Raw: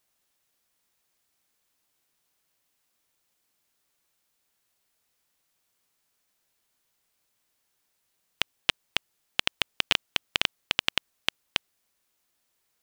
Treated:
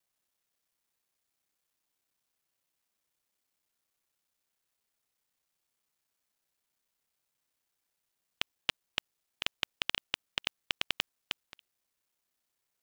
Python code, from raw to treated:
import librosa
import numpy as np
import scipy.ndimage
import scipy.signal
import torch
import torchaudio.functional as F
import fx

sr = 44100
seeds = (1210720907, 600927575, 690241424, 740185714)

y = fx.local_reverse(x, sr, ms=31.0)
y = y * librosa.db_to_amplitude(-7.5)